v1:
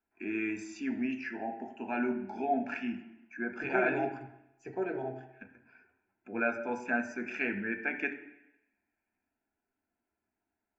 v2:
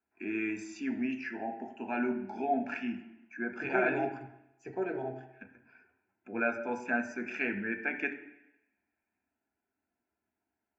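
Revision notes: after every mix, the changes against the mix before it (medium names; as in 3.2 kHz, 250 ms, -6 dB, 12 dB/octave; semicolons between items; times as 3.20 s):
master: add high-pass 49 Hz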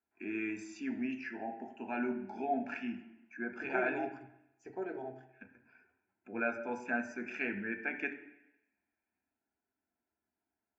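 first voice -3.5 dB; second voice: send -8.0 dB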